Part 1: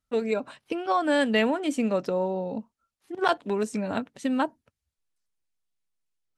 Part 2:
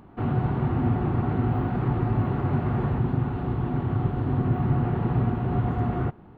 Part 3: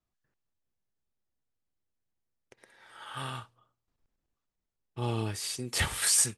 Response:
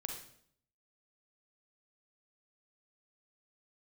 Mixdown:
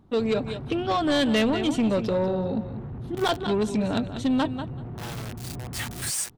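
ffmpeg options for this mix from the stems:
-filter_complex "[0:a]equalizer=frequency=3600:width_type=o:width=0.68:gain=14,volume=-1dB,asplit=2[link_01][link_02];[link_02]volume=-12dB[link_03];[1:a]asoftclip=type=tanh:threshold=-25.5dB,volume=-14.5dB[link_04];[2:a]acrusher=bits=4:mix=0:aa=0.000001,highpass=730,volume=-4dB[link_05];[link_03]aecho=0:1:191|382|573:1|0.15|0.0225[link_06];[link_01][link_04][link_05][link_06]amix=inputs=4:normalize=0,lowshelf=frequency=480:gain=9,asoftclip=type=tanh:threshold=-17.5dB"

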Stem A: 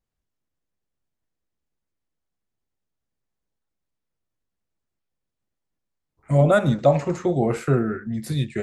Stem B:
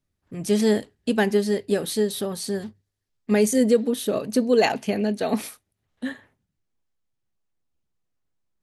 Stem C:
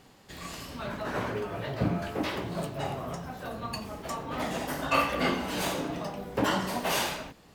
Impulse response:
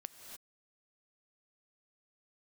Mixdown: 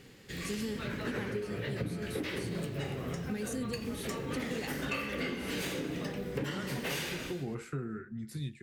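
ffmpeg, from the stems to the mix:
-filter_complex "[0:a]adelay=50,volume=-13dB,asplit=2[link_01][link_02];[link_02]volume=-16.5dB[link_03];[1:a]flanger=delay=3.9:depth=8.6:regen=82:speed=1.1:shape=triangular,volume=-7.5dB[link_04];[2:a]equalizer=frequency=125:width_type=o:width=1:gain=4,equalizer=frequency=500:width_type=o:width=1:gain=10,equalizer=frequency=1000:width_type=o:width=1:gain=-9,equalizer=frequency=2000:width_type=o:width=1:gain=6,volume=-2dB,asplit=2[link_05][link_06];[link_06]volume=-4dB[link_07];[3:a]atrim=start_sample=2205[link_08];[link_03][link_07]amix=inputs=2:normalize=0[link_09];[link_09][link_08]afir=irnorm=-1:irlink=0[link_10];[link_01][link_04][link_05][link_10]amix=inputs=4:normalize=0,equalizer=frequency=640:width=2.3:gain=-13.5,acompressor=threshold=-32dB:ratio=10"

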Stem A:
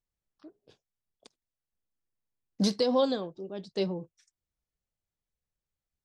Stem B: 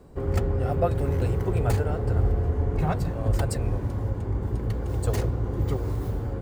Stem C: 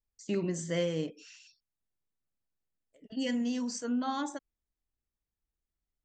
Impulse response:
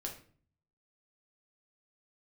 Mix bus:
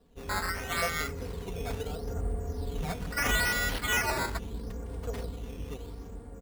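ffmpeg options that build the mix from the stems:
-filter_complex "[1:a]aecho=1:1:4.3:0.73,volume=-14.5dB[link_01];[2:a]aeval=exprs='val(0)*sgn(sin(2*PI*1700*n/s))':channel_layout=same,volume=-2dB[link_02];[link_01][link_02]amix=inputs=2:normalize=0,dynaudnorm=framelen=410:gausssize=7:maxgain=4.5dB,acrusher=samples=10:mix=1:aa=0.000001:lfo=1:lforange=10:lforate=0.76"

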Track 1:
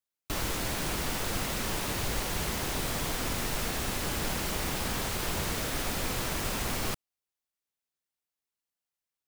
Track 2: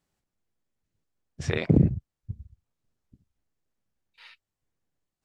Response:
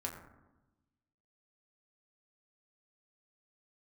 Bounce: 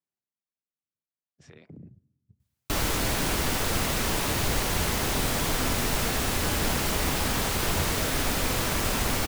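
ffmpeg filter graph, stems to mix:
-filter_complex "[0:a]adelay=2400,volume=3dB,asplit=2[link_01][link_02];[link_02]volume=-7.5dB[link_03];[1:a]highpass=150,acrossover=split=290[link_04][link_05];[link_05]acompressor=threshold=-33dB:ratio=6[link_06];[link_04][link_06]amix=inputs=2:normalize=0,alimiter=limit=-21.5dB:level=0:latency=1:release=18,volume=-18dB,asplit=2[link_07][link_08];[link_08]volume=-19.5dB[link_09];[2:a]atrim=start_sample=2205[link_10];[link_03][link_09]amix=inputs=2:normalize=0[link_11];[link_11][link_10]afir=irnorm=-1:irlink=0[link_12];[link_01][link_07][link_12]amix=inputs=3:normalize=0"

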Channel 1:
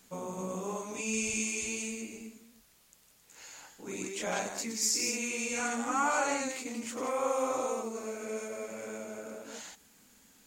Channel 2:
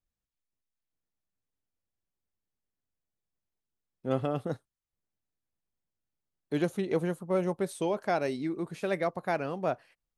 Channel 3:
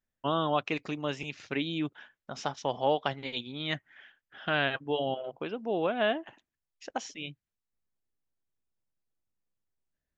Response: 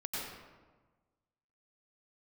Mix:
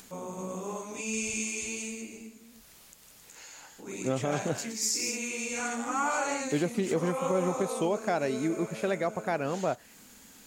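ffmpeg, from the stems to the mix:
-filter_complex "[0:a]acompressor=mode=upward:threshold=-44dB:ratio=2.5,volume=0dB[link_01];[1:a]volume=3dB,asplit=2[link_02][link_03];[2:a]acompressor=threshold=-30dB:ratio=6,volume=-12dB[link_04];[link_03]apad=whole_len=448662[link_05];[link_04][link_05]sidechaingate=range=-33dB:threshold=-52dB:ratio=16:detection=peak[link_06];[link_01][link_02][link_06]amix=inputs=3:normalize=0,alimiter=limit=-18dB:level=0:latency=1:release=150"

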